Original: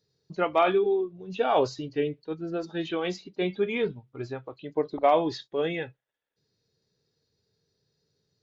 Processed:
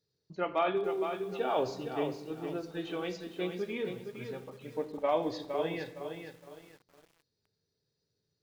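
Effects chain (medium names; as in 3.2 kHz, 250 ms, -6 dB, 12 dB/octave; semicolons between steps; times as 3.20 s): 3.51–5.09 s: comb of notches 350 Hz; on a send at -9.5 dB: reverberation RT60 0.95 s, pre-delay 3 ms; on the sum: bit-crushed delay 462 ms, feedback 35%, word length 8-bit, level -7 dB; trim -7.5 dB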